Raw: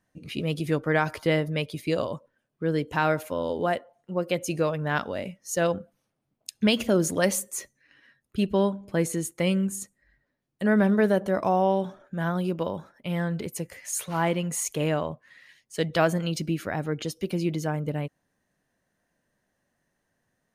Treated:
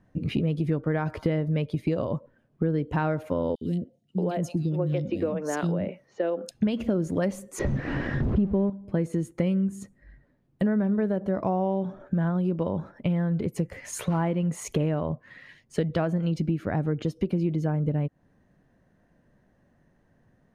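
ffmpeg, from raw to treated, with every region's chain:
-filter_complex "[0:a]asettb=1/sr,asplit=3[s0][s1][s2];[s0]atrim=end=3.554[s3];[s1]atrim=start=3.55:end=6.51,asetpts=PTS-STARTPTS,afade=t=in:d=0.004:c=qsin,afade=t=out:st=2.956:d=0.004:c=qsin,highpass=f=200:p=1,acrossover=split=480|3000[s4][s5][s6];[s5]acompressor=threshold=0.00794:ratio=2.5:attack=3.2:release=140:knee=2.83:detection=peak[s7];[s4][s7][s6]amix=inputs=3:normalize=0,acrossover=split=300|3200[s8][s9][s10];[s8]adelay=60[s11];[s9]adelay=630[s12];[s11][s12][s10]amix=inputs=3:normalize=0,atrim=end_sample=130536[s13];[s2]atrim=start=6.506[s14];[s3][s13]acrossfade=d=0.004:c1=hsin:c2=qsin[s15];[s15][s14]acrossfade=d=0.004:c1=qsin:c2=hsin,asettb=1/sr,asplit=3[s16][s17][s18];[s16]atrim=end=7.594[s19];[s17]atrim=start=7.59:end=8.7,asetpts=PTS-STARTPTS,afade=t=in:d=0.004:c=qsin,afade=t=out:st=1.106:d=0.004:c=qsin,aeval=exprs='val(0)+0.5*0.0299*sgn(val(0))':c=same,lowpass=4100,tiltshelf=f=1100:g=7[s20];[s18]atrim=start=8.696[s21];[s19][s20]acrossfade=d=0.004:c1=hsin:c2=qsin[s22];[s22][s21]acrossfade=d=0.004:c1=qsin:c2=hsin,lowpass=f=1400:p=1,lowshelf=f=330:g=9,acompressor=threshold=0.0251:ratio=6,volume=2.66"

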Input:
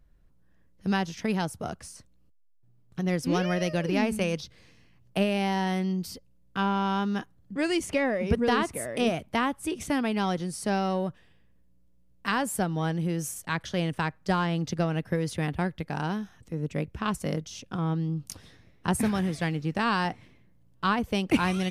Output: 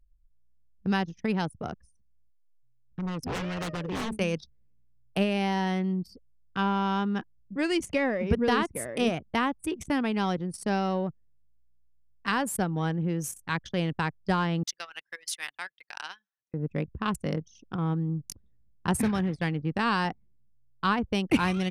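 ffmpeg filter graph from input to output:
-filter_complex "[0:a]asettb=1/sr,asplit=3[s0][s1][s2];[s0]atrim=end=1.834[s3];[s1]atrim=start=1.83:end=4.19,asetpts=PTS-STARTPTS,afade=t=in:d=0.004:c=qsin,afade=t=out:st=2.356:d=0.004:c=qsin,bandreject=f=71.52:t=h:w=4,bandreject=f=143.04:t=h:w=4,bandreject=f=214.56:t=h:w=4,bandreject=f=286.08:t=h:w=4,tremolo=f=2.7:d=0.32,aeval=exprs='0.0473*(abs(mod(val(0)/0.0473+3,4)-2)-1)':c=same[s4];[s2]atrim=start=4.186[s5];[s3][s4]acrossfade=d=0.004:c1=hsin:c2=qsin[s6];[s6][s5]acrossfade=d=0.004:c1=qsin:c2=hsin,asettb=1/sr,asplit=3[s7][s8][s9];[s7]atrim=end=14.634[s10];[s8]atrim=start=14.63:end=16.54,asetpts=PTS-STARTPTS,afade=t=in:d=0.004:c=qsin,afade=t=out:st=1.906:d=0.004:c=qsin,highpass=1400,highshelf=f=2800:g=8.5[s11];[s9]atrim=start=16.536[s12];[s10][s11]acrossfade=d=0.004:c1=hsin:c2=qsin[s13];[s13][s12]acrossfade=d=0.004:c1=qsin:c2=hsin,anlmdn=2.51,equalizer=f=650:w=6.1:g=-4"

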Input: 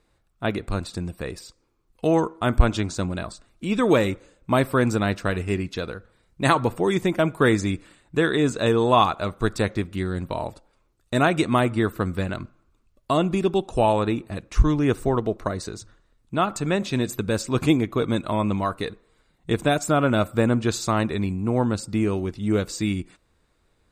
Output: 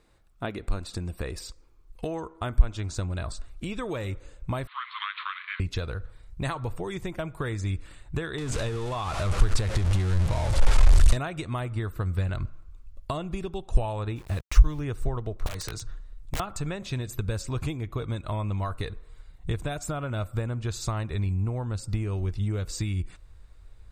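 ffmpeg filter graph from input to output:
-filter_complex "[0:a]asettb=1/sr,asplit=3[s0][s1][s2];[s0]atrim=end=4.674[s3];[s1]atrim=start=4.67:end=5.6,asetpts=PTS-STARTPTS,afade=t=in:d=0.004:c=qsin,afade=t=out:st=0.926:d=0.004:c=qsin,aeval=exprs='val(0)+0.5*0.0316*sgn(val(0))':c=same,asuperpass=centerf=2500:order=20:qfactor=0.84,afreqshift=-360[s4];[s2]atrim=start=5.596[s5];[s3][s4]acrossfade=d=0.004:c1=hsin:c2=qsin[s6];[s6][s5]acrossfade=d=0.004:c1=qsin:c2=hsin,asettb=1/sr,asplit=3[s7][s8][s9];[s7]atrim=end=8.384[s10];[s8]atrim=start=8.38:end=11.17,asetpts=PTS-STARTPTS,afade=t=in:d=0.004:c=qsin,afade=t=out:st=2.786:d=0.004:c=qsin,aeval=exprs='val(0)+0.5*0.0891*sgn(val(0))':c=same,lowpass=f=10000:w=0.5412,lowpass=f=10000:w=1.3066,acompressor=threshold=0.1:ratio=2.5:attack=3.2:release=140:knee=1:detection=peak[s11];[s9]atrim=start=11.166[s12];[s10][s11]acrossfade=d=0.004:c1=hsin:c2=qsin[s13];[s13][s12]acrossfade=d=0.004:c1=qsin:c2=hsin,asettb=1/sr,asplit=3[s14][s15][s16];[s14]atrim=end=14.164[s17];[s15]atrim=start=14.16:end=14.81,asetpts=PTS-STARTPTS,afade=t=in:d=0.004:c=qsin,afade=t=out:st=0.646:d=0.004:c=qsin,lowshelf=f=150:g=-4,acompressor=mode=upward:threshold=0.0316:ratio=2.5:attack=3.2:release=140:knee=2.83:detection=peak,aeval=exprs='val(0)*gte(abs(val(0)),0.00944)':c=same[s18];[s16]atrim=start=14.806[s19];[s17][s18]acrossfade=d=0.004:c1=hsin:c2=qsin[s20];[s20][s19]acrossfade=d=0.004:c1=qsin:c2=hsin,asettb=1/sr,asplit=3[s21][s22][s23];[s21]atrim=end=15.464[s24];[s22]atrim=start=15.46:end=16.4,asetpts=PTS-STARTPTS,afade=t=in:d=0.004:c=qsin,afade=t=out:st=0.936:d=0.004:c=qsin,aecho=1:1:6.5:0.36,atrim=end_sample=41454,acrossover=split=170|800|5600[s25][s26][s27][s28];[s25]acompressor=threshold=0.00355:ratio=3[s29];[s26]acompressor=threshold=0.0112:ratio=3[s30];[s27]acompressor=threshold=0.02:ratio=3[s31];[s28]acompressor=threshold=0.00631:ratio=3[s32];[s29][s30][s31][s32]amix=inputs=4:normalize=0,aeval=exprs='(mod(25.1*val(0)+1,2)-1)/25.1':c=same[s33];[s23]atrim=start=16.396[s34];[s24][s33]acrossfade=d=0.004:c1=hsin:c2=qsin[s35];[s35][s34]acrossfade=d=0.004:c1=qsin:c2=hsin,acompressor=threshold=0.0251:ratio=5,asubboost=boost=10.5:cutoff=72,volume=1.33"

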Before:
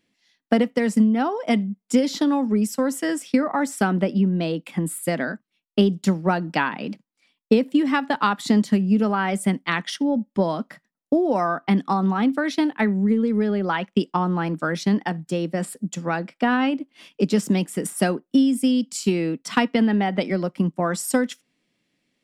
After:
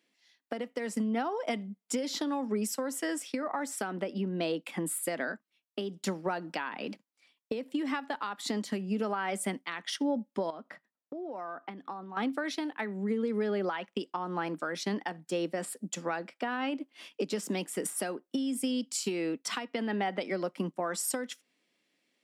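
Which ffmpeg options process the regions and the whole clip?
-filter_complex "[0:a]asettb=1/sr,asplit=3[s0][s1][s2];[s0]atrim=end=10.504[s3];[s1]atrim=start=10.5:end=12.17,asetpts=PTS-STARTPTS,afade=t=in:d=0.004:c=qsin,afade=t=out:st=1.666:d=0.004:c=qsin,aemphasis=mode=reproduction:type=75kf,acompressor=threshold=0.02:ratio=5:attack=3.2:release=140:knee=1:detection=peak[s4];[s2]atrim=start=12.166[s5];[s3][s4]acrossfade=d=0.004:c1=hsin:c2=qsin[s6];[s6][s5]acrossfade=d=0.004:c1=qsin:c2=hsin,highpass=330,acompressor=threshold=0.0708:ratio=6,alimiter=limit=0.106:level=0:latency=1:release=369,volume=0.794"

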